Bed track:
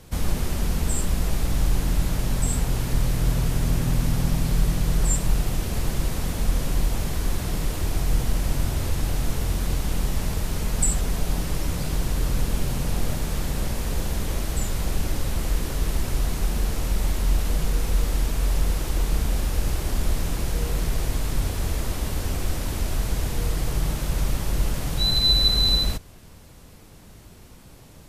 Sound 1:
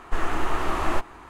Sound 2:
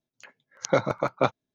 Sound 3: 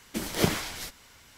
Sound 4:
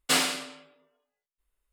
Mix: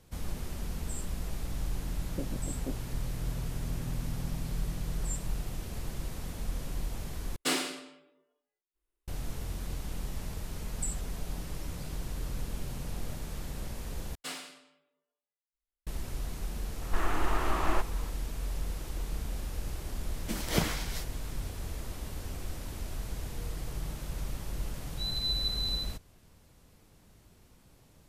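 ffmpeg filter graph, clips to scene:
ffmpeg -i bed.wav -i cue0.wav -i cue1.wav -i cue2.wav -i cue3.wav -filter_complex "[4:a]asplit=2[link_01][link_02];[0:a]volume=-12.5dB[link_03];[2:a]lowpass=frequency=280:width_type=q:width=2.1[link_04];[link_01]equalizer=frequency=340:width=2.8:gain=14[link_05];[3:a]equalizer=frequency=380:width=5.4:gain=-7[link_06];[link_03]asplit=3[link_07][link_08][link_09];[link_07]atrim=end=7.364[link_10];[link_05]atrim=end=1.72,asetpts=PTS-STARTPTS,volume=-7dB[link_11];[link_08]atrim=start=9.076:end=14.154[link_12];[link_02]atrim=end=1.72,asetpts=PTS-STARTPTS,volume=-16.5dB[link_13];[link_09]atrim=start=15.866[link_14];[link_04]atrim=end=1.54,asetpts=PTS-STARTPTS,volume=-13dB,afade=type=in:duration=0.004:curve=hsin,afade=type=out:start_time=1.536:duration=0.004:curve=hsin,adelay=1450[link_15];[1:a]atrim=end=1.29,asetpts=PTS-STARTPTS,volume=-5dB,afade=type=in:duration=0.004:curve=hsin,afade=type=out:start_time=1.286:duration=0.004:curve=hsin,adelay=16810[link_16];[link_06]atrim=end=1.37,asetpts=PTS-STARTPTS,volume=-3.5dB,afade=type=in:duration=0.004:curve=hsin,afade=type=out:start_time=1.366:duration=0.004:curve=hsin,adelay=20140[link_17];[link_10][link_11]acrossfade=duration=0.004:curve1=hsin:curve2=hsin[link_18];[link_18][link_12]acrossfade=duration=0.004:curve1=hsin:curve2=hsin[link_19];[link_19][link_13]acrossfade=duration=0.004:curve1=hsin:curve2=hsin[link_20];[link_20][link_14]acrossfade=duration=0.004:curve1=hsin:curve2=hsin[link_21];[link_21][link_15][link_16][link_17]amix=inputs=4:normalize=0" out.wav

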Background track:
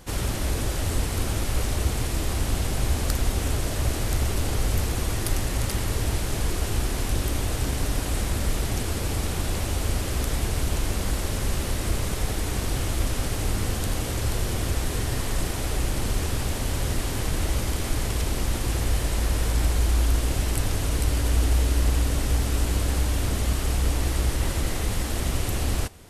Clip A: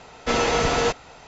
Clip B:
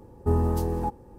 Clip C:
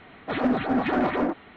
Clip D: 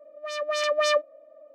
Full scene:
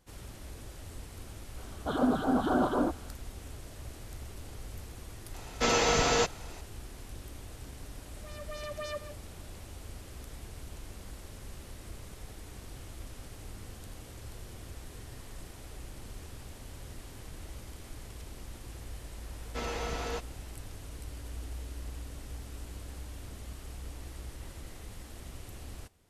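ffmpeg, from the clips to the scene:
ffmpeg -i bed.wav -i cue0.wav -i cue1.wav -i cue2.wav -i cue3.wav -filter_complex "[1:a]asplit=2[link_01][link_02];[0:a]volume=-19.5dB[link_03];[3:a]asuperstop=centerf=2200:order=12:qfactor=1.6[link_04];[link_01]highshelf=frequency=6400:gain=11.5[link_05];[4:a]asplit=2[link_06][link_07];[link_07]adelay=140,highpass=300,lowpass=3400,asoftclip=type=hard:threshold=-21dB,volume=-6dB[link_08];[link_06][link_08]amix=inputs=2:normalize=0[link_09];[link_04]atrim=end=1.56,asetpts=PTS-STARTPTS,volume=-3.5dB,afade=type=in:duration=0.004:curve=hsin,afade=type=out:start_time=1.556:duration=0.004:curve=hsin,adelay=1580[link_10];[link_05]atrim=end=1.27,asetpts=PTS-STARTPTS,volume=-5.5dB,afade=type=in:duration=0.004:curve=hsin,afade=type=out:start_time=1.266:duration=0.004:curve=hsin,adelay=5340[link_11];[link_09]atrim=end=1.54,asetpts=PTS-STARTPTS,volume=-17dB,afade=type=in:duration=0.004:curve=hsin,afade=type=out:start_time=1.536:duration=0.004:curve=hsin,adelay=8000[link_12];[link_02]atrim=end=1.27,asetpts=PTS-STARTPTS,volume=-15.5dB,afade=type=in:duration=0.004:curve=hsin,afade=type=out:start_time=1.266:duration=0.004:curve=hsin,adelay=19280[link_13];[link_03][link_10][link_11][link_12][link_13]amix=inputs=5:normalize=0" out.wav

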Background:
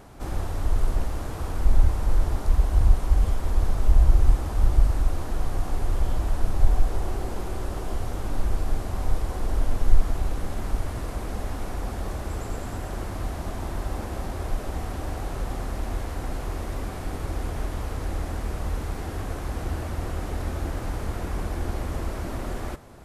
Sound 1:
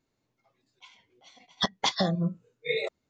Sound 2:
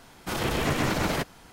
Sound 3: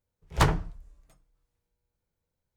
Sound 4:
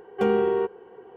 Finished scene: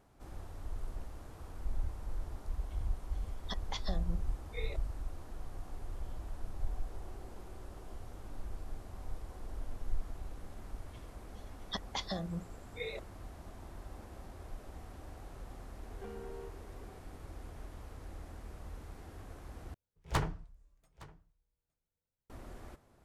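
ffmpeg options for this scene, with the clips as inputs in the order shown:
ffmpeg -i bed.wav -i cue0.wav -i cue1.wav -i cue2.wav -i cue3.wav -filter_complex "[1:a]asplit=2[link_01][link_02];[0:a]volume=-18dB[link_03];[4:a]acompressor=threshold=-32dB:ratio=6:attack=3.2:release=140:knee=1:detection=peak[link_04];[3:a]aecho=1:1:863:0.0891[link_05];[link_03]asplit=2[link_06][link_07];[link_06]atrim=end=19.744[link_08];[link_05]atrim=end=2.56,asetpts=PTS-STARTPTS,volume=-10dB[link_09];[link_07]atrim=start=22.296[link_10];[link_01]atrim=end=3.09,asetpts=PTS-STARTPTS,volume=-15dB,afade=type=in:duration=0.004:curve=hsin,afade=type=out:start_time=3.086:duration=0.004:curve=hsin,adelay=1880[link_11];[link_02]atrim=end=3.09,asetpts=PTS-STARTPTS,volume=-12dB,afade=type=in:duration=0.004:curve=hsin,afade=type=out:start_time=3.086:duration=0.004:curve=hsin,adelay=10110[link_12];[link_04]atrim=end=1.16,asetpts=PTS-STARTPTS,volume=-12.5dB,afade=type=in:duration=0.004:curve=hsin,afade=type=out:start_time=1.156:duration=0.004:curve=hsin,adelay=15830[link_13];[link_08][link_09]acrossfade=duration=0.004:curve1=hsin:curve2=hsin[link_14];[link_14][link_10]acrossfade=duration=0.004:curve1=hsin:curve2=hsin[link_15];[link_15][link_11][link_12][link_13]amix=inputs=4:normalize=0" out.wav

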